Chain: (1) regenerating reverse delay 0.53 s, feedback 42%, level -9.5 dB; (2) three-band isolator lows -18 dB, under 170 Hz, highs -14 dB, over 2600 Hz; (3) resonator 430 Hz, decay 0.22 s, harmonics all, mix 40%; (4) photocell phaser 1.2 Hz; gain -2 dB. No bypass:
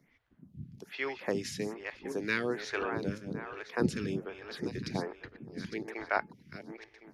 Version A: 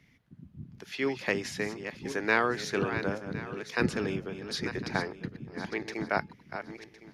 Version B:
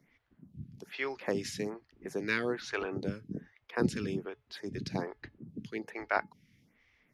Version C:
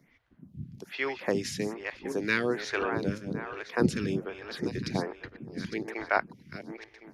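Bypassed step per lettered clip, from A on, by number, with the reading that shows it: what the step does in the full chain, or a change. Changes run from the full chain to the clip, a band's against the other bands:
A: 4, momentary loudness spread change -2 LU; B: 1, momentary loudness spread change -2 LU; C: 3, loudness change +4.0 LU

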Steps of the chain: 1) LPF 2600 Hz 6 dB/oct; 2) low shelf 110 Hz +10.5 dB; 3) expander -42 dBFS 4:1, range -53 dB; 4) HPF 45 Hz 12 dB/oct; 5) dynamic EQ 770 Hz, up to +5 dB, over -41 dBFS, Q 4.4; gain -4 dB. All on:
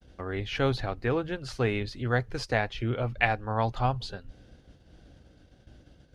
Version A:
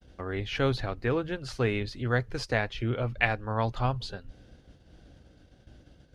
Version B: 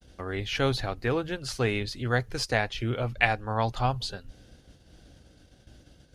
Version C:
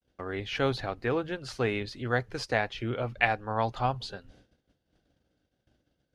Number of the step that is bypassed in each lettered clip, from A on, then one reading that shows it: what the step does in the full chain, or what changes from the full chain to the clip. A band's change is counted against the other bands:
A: 5, 1 kHz band -2.5 dB; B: 1, 8 kHz band +8.0 dB; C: 2, 125 Hz band -4.5 dB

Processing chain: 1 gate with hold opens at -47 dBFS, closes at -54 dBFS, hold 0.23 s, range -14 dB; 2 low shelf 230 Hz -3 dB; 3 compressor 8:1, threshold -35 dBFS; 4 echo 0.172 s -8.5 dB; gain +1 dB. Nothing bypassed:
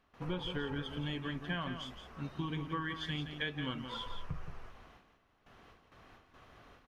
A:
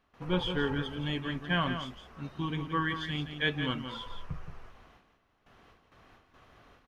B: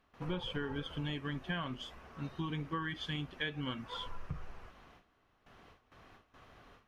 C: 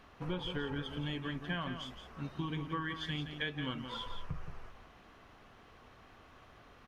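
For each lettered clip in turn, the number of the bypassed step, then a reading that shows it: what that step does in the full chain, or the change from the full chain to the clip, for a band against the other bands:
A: 3, mean gain reduction 2.5 dB; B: 4, momentary loudness spread change -4 LU; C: 1, momentary loudness spread change +6 LU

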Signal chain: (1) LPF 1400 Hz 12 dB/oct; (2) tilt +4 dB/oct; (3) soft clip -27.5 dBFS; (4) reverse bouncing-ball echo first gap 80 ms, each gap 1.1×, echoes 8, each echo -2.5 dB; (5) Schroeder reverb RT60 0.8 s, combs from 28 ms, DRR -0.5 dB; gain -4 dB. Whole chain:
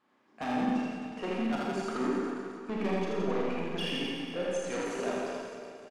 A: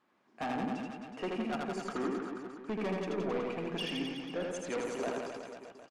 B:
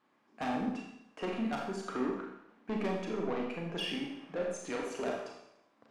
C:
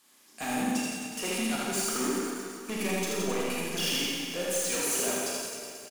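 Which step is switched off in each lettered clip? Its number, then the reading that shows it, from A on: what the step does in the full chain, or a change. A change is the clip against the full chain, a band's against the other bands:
5, echo-to-direct 6.0 dB to 1.0 dB; 4, echo-to-direct 6.0 dB to 0.5 dB; 1, 8 kHz band +19.0 dB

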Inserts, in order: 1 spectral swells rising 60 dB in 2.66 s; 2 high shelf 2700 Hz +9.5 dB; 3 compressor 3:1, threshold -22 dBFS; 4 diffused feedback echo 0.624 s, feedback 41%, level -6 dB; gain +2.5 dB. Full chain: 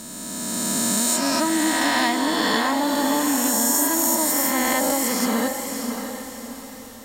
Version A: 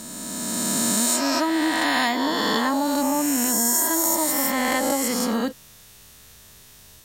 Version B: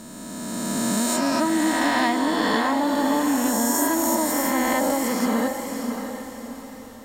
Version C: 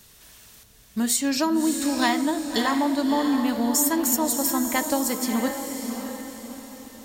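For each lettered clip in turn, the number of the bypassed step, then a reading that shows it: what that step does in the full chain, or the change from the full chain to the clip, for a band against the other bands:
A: 4, echo-to-direct -5.0 dB to none; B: 2, 8 kHz band -6.5 dB; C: 1, 250 Hz band +5.0 dB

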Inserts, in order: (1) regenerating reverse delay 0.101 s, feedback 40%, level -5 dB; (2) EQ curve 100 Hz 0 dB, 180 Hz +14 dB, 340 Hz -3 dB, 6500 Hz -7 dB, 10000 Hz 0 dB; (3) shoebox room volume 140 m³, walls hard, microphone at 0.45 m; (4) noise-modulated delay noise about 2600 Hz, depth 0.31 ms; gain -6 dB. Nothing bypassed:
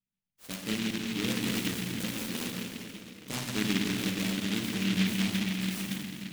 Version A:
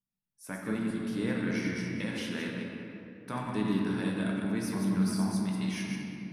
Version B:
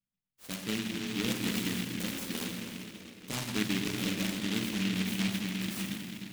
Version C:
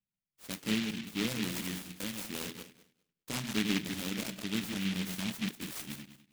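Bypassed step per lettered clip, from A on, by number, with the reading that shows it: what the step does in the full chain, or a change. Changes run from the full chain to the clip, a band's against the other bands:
4, 4 kHz band -10.5 dB; 1, momentary loudness spread change -1 LU; 3, crest factor change +2.0 dB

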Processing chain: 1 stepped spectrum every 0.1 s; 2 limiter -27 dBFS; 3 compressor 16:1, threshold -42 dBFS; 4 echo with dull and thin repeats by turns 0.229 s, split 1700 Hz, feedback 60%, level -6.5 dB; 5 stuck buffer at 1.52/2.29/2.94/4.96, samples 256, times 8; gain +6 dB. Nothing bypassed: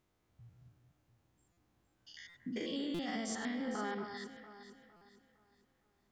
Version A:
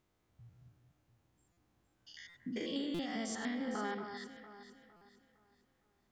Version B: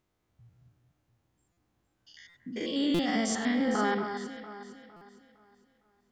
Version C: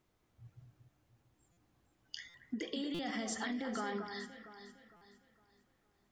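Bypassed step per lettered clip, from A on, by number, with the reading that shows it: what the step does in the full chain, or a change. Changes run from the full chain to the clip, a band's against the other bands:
2, mean gain reduction 2.0 dB; 3, mean gain reduction 6.0 dB; 1, 250 Hz band -1.5 dB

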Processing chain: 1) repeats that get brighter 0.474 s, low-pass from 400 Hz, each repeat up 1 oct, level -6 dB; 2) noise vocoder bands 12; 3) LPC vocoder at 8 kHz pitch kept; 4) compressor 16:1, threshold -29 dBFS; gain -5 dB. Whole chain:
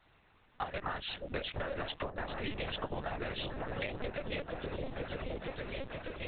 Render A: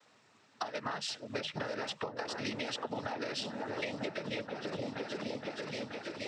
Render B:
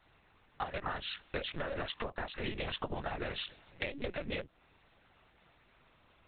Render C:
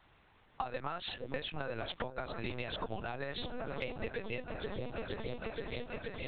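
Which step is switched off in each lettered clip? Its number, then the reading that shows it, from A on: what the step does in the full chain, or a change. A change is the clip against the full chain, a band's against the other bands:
3, 125 Hz band -4.5 dB; 1, crest factor change +4.5 dB; 2, crest factor change +3.5 dB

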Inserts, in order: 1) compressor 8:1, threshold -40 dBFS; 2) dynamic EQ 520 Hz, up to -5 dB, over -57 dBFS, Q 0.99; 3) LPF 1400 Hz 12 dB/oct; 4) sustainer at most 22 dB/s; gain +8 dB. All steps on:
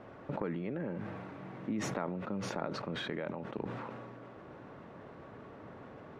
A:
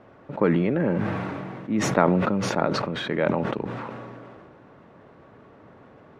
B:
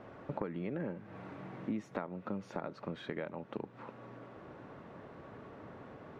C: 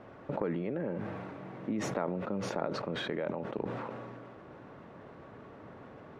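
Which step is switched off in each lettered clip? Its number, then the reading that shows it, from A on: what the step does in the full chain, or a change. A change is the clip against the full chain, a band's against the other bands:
1, mean gain reduction 6.5 dB; 4, crest factor change +2.5 dB; 2, 500 Hz band +3.0 dB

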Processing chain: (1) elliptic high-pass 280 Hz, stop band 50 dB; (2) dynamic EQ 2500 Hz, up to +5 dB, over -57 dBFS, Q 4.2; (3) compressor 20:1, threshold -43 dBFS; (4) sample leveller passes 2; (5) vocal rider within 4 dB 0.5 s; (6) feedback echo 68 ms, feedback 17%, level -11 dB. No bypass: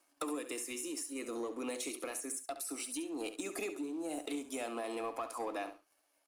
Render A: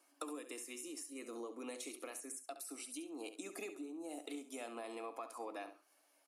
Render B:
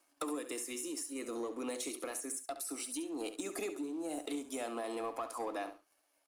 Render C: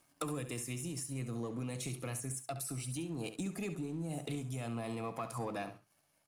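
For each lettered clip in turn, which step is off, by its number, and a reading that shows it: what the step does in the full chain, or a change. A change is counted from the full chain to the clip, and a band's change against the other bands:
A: 4, crest factor change +6.5 dB; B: 2, 2 kHz band -2.0 dB; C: 1, 125 Hz band +29.5 dB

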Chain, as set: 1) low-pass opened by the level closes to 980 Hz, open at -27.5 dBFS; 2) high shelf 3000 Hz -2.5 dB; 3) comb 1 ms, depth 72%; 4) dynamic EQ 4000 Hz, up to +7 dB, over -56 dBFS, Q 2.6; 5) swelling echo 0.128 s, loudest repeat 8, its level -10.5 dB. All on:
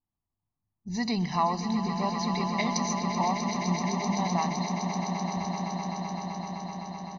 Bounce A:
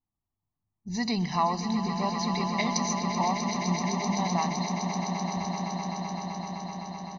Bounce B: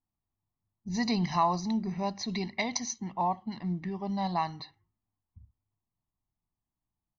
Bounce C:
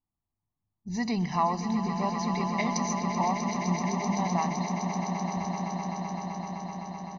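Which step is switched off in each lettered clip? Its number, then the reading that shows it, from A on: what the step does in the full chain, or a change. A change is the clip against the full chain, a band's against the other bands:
2, 4 kHz band +1.5 dB; 5, echo-to-direct 1.0 dB to none; 4, 4 kHz band -5.0 dB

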